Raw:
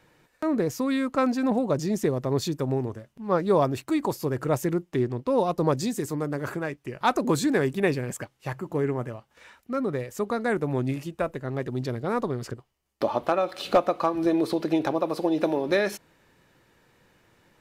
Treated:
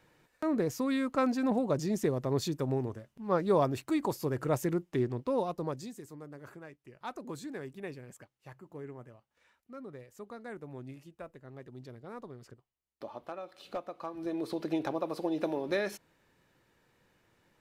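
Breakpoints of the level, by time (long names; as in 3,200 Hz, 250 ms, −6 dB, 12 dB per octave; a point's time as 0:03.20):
0:05.21 −5 dB
0:06.03 −18 dB
0:13.89 −18 dB
0:14.65 −8 dB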